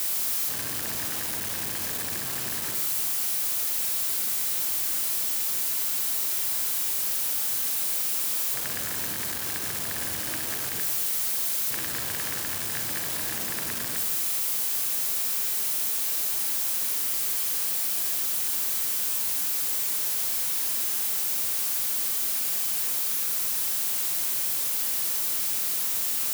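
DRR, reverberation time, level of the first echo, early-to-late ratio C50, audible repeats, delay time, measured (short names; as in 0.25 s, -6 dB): 3.5 dB, 0.95 s, none, 5.0 dB, none, none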